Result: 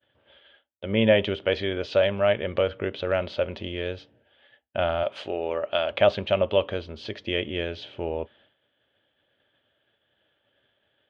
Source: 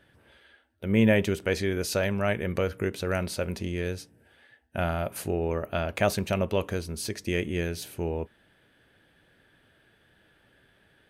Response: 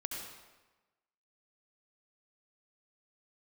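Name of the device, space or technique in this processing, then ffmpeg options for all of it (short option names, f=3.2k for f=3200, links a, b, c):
guitar cabinet: -filter_complex "[0:a]asettb=1/sr,asplit=3[a][b][c];[a]atrim=end=5.034[d];[b]atrim=start=5.03:end=5.91,asetpts=PTS-STARTPTS,afade=t=in:d=0.004:c=qsin,afade=t=out:st=0.876:d=0.004:c=qsin,aemphasis=mode=production:type=bsi[e];[c]atrim=start=5.906[f];[d][e]acrossfade=d=0.004:c1=hsin:c2=qsin[g];[g][f]acrossfade=d=0.004:c1=qsin:c2=hsin,agate=range=-33dB:threshold=-54dB:ratio=3:detection=peak,lowpass=8.1k,highpass=81,equalizer=f=170:t=q:w=4:g=-8,equalizer=f=580:t=q:w=4:g=10,equalizer=f=830:t=q:w=4:g=3,equalizer=f=1.2k:t=q:w=4:g=3,lowpass=f=3.9k:w=0.5412,lowpass=f=3.9k:w=1.3066,equalizer=f=3.2k:w=3.5:g=12.5,volume=-1dB"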